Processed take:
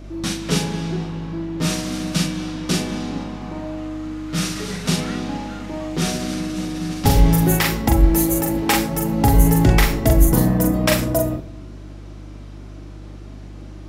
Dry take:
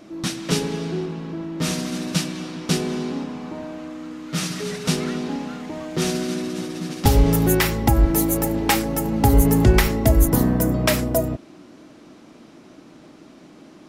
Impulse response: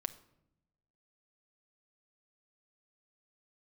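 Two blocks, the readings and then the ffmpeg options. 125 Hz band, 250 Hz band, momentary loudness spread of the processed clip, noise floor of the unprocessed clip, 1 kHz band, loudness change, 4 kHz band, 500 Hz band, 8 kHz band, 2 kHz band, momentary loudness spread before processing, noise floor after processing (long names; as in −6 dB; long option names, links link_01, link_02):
+2.0 dB, +1.5 dB, 23 LU, −47 dBFS, +1.5 dB, +1.5 dB, +2.0 dB, −0.5 dB, +1.5 dB, +2.0 dB, 14 LU, −36 dBFS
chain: -filter_complex "[0:a]flanger=delay=3.3:depth=3.7:regen=-72:speed=0.36:shape=sinusoidal,aeval=exprs='val(0)+0.00794*(sin(2*PI*50*n/s)+sin(2*PI*2*50*n/s)/2+sin(2*PI*3*50*n/s)/3+sin(2*PI*4*50*n/s)/4+sin(2*PI*5*50*n/s)/5)':channel_layout=same,asplit=2[link_01][link_02];[1:a]atrim=start_sample=2205,adelay=42[link_03];[link_02][link_03]afir=irnorm=-1:irlink=0,volume=-2.5dB[link_04];[link_01][link_04]amix=inputs=2:normalize=0,volume=4.5dB"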